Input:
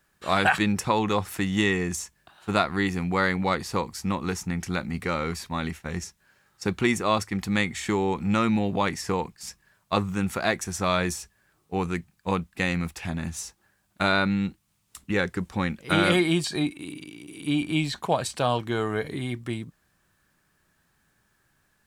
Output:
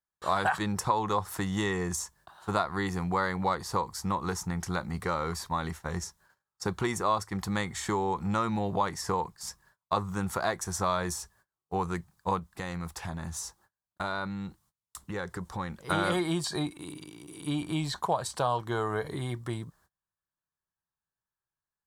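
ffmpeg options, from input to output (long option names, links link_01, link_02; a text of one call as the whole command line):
ffmpeg -i in.wav -filter_complex "[0:a]asettb=1/sr,asplit=3[link_01][link_02][link_03];[link_01]atrim=end=12.394[link_04];[link_02]atrim=start=12.39:end=15.83,asetpts=PTS-STARTPTS,afade=type=in:duration=0.004:curve=qsin,afade=type=out:start_time=3.436:duration=0.004:curve=qsin,acompressor=threshold=-32dB:ratio=2.5:attack=3.2:release=140:knee=1:detection=peak[link_05];[link_03]atrim=start=15.826[link_06];[link_04][link_05]acrossfade=duration=0.004:curve1=hsin:curve2=qsin[link_07];[link_07][link_06]acrossfade=duration=0.004:curve1=qsin:curve2=hsin,agate=range=-28dB:threshold=-59dB:ratio=16:detection=peak,equalizer=frequency=250:width_type=o:width=0.67:gain=-8,equalizer=frequency=1000:width_type=o:width=0.67:gain=7,equalizer=frequency=2500:width_type=o:width=0.67:gain=-11,acompressor=threshold=-28dB:ratio=2" out.wav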